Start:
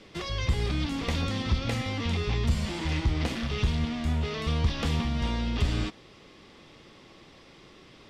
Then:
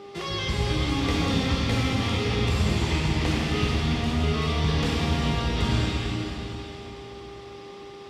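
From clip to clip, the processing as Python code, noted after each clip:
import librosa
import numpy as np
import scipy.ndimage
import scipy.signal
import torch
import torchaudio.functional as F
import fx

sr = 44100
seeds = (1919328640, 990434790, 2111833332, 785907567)

y = fx.rev_plate(x, sr, seeds[0], rt60_s=3.8, hf_ratio=1.0, predelay_ms=0, drr_db=-4.0)
y = fx.dmg_buzz(y, sr, base_hz=400.0, harmonics=3, level_db=-43.0, tilt_db=-8, odd_only=False)
y = scipy.signal.sosfilt(scipy.signal.butter(2, 71.0, 'highpass', fs=sr, output='sos'), y)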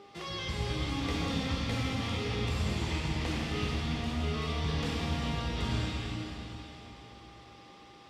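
y = fx.hum_notches(x, sr, base_hz=50, count=8)
y = y * librosa.db_to_amplitude(-7.5)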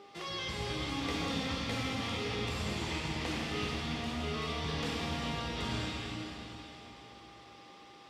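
y = fx.low_shelf(x, sr, hz=140.0, db=-10.5)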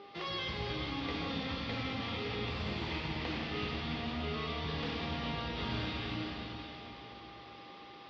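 y = scipy.signal.sosfilt(scipy.signal.butter(6, 4800.0, 'lowpass', fs=sr, output='sos'), x)
y = fx.rider(y, sr, range_db=4, speed_s=0.5)
y = y * librosa.db_to_amplitude(-1.0)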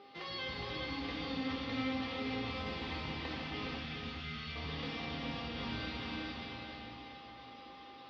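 y = fx.spec_box(x, sr, start_s=3.79, length_s=0.77, low_hz=230.0, high_hz=1200.0, gain_db=-11)
y = fx.comb_fb(y, sr, f0_hz=260.0, decay_s=0.16, harmonics='all', damping=0.0, mix_pct=80)
y = y + 10.0 ** (-5.0 / 20.0) * np.pad(y, (int(415 * sr / 1000.0), 0))[:len(y)]
y = y * librosa.db_to_amplitude(5.0)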